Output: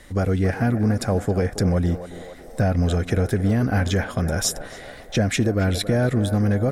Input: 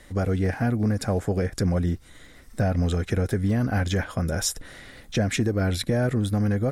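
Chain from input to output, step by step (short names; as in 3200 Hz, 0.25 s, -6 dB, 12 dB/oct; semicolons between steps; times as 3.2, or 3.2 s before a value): narrowing echo 0.276 s, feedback 70%, band-pass 710 Hz, level -9.5 dB; gain +3 dB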